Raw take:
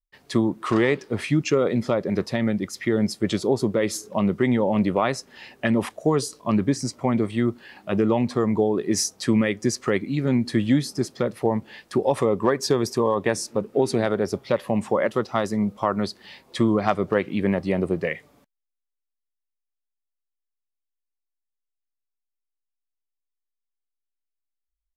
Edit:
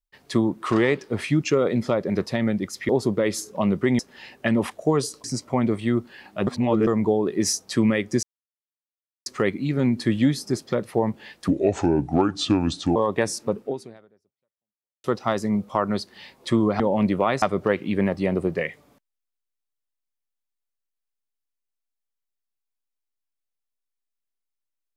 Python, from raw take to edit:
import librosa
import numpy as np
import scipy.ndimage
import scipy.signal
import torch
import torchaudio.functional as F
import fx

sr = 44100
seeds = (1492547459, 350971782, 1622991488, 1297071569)

y = fx.edit(x, sr, fx.cut(start_s=2.89, length_s=0.57),
    fx.move(start_s=4.56, length_s=0.62, to_s=16.88),
    fx.cut(start_s=6.43, length_s=0.32),
    fx.reverse_span(start_s=7.98, length_s=0.4),
    fx.insert_silence(at_s=9.74, length_s=1.03),
    fx.speed_span(start_s=11.96, length_s=1.08, speed=0.73),
    fx.fade_out_span(start_s=13.68, length_s=1.44, curve='exp'), tone=tone)